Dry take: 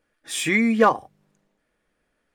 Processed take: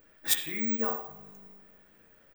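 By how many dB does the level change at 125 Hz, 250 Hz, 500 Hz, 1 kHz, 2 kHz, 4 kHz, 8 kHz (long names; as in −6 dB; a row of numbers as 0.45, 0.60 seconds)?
−14.5, −13.5, −16.0, −18.0, −14.0, −2.5, −2.0 decibels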